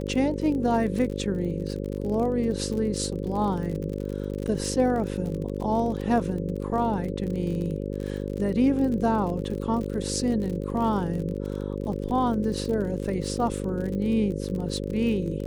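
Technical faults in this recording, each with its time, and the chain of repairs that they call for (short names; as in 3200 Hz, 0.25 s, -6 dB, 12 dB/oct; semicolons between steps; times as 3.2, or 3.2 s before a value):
buzz 50 Hz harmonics 11 -31 dBFS
crackle 43/s -32 dBFS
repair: de-click; de-hum 50 Hz, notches 11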